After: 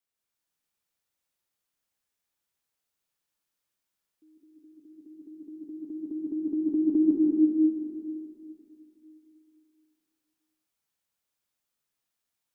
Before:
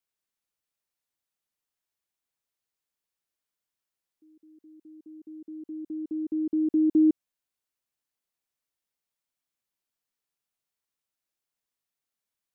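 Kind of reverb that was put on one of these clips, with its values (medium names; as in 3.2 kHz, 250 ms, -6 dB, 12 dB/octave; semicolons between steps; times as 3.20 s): plate-style reverb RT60 2.9 s, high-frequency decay 0.95×, pre-delay 120 ms, DRR -4 dB; trim -1.5 dB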